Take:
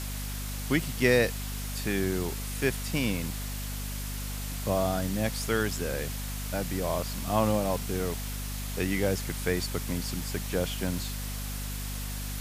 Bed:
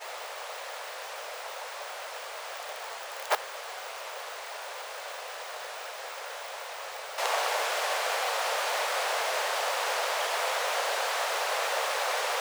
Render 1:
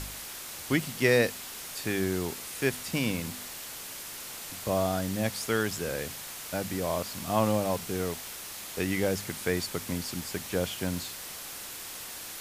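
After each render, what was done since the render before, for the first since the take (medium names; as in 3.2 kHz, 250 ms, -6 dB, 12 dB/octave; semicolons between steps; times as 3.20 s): de-hum 50 Hz, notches 5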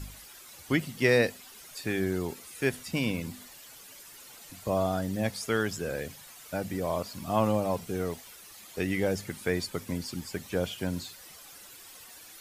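noise reduction 12 dB, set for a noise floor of -41 dBFS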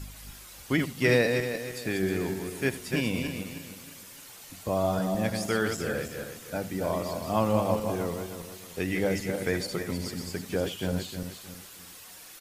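backward echo that repeats 156 ms, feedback 56%, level -5 dB; delay 79 ms -18 dB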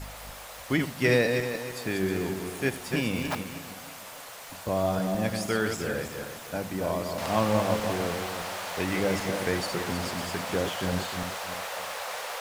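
add bed -6 dB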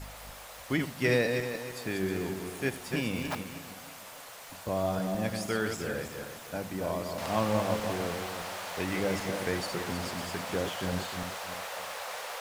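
trim -3.5 dB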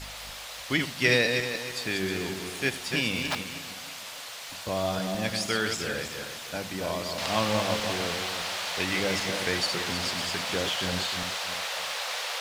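peaking EQ 3.9 kHz +12 dB 2.2 oct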